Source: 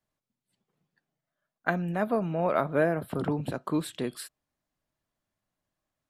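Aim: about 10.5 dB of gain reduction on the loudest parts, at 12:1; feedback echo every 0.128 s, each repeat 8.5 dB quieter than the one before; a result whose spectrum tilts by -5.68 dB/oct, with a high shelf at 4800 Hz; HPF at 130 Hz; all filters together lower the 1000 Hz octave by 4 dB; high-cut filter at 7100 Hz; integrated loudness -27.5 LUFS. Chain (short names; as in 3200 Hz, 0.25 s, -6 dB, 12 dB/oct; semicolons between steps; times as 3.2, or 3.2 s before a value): HPF 130 Hz; LPF 7100 Hz; bell 1000 Hz -6 dB; high shelf 4800 Hz -3 dB; compressor 12:1, threshold -33 dBFS; feedback echo 0.128 s, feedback 38%, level -8.5 dB; gain +11.5 dB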